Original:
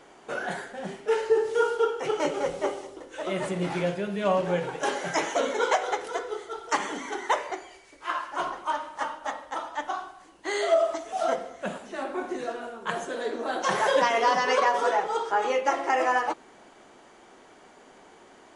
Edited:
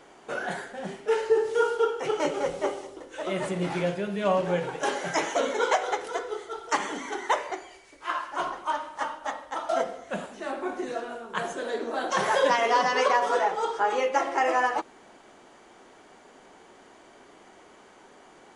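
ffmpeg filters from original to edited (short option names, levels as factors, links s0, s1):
-filter_complex "[0:a]asplit=2[s0][s1];[s0]atrim=end=9.692[s2];[s1]atrim=start=11.208[s3];[s2][s3]acrossfade=d=0.004:c1=hsin:c2=hsin"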